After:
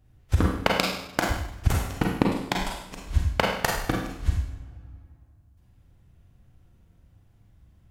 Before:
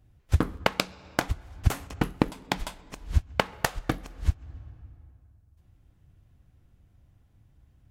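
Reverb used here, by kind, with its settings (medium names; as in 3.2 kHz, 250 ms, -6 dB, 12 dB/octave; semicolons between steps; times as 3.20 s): Schroeder reverb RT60 0.73 s, combs from 33 ms, DRR -1 dB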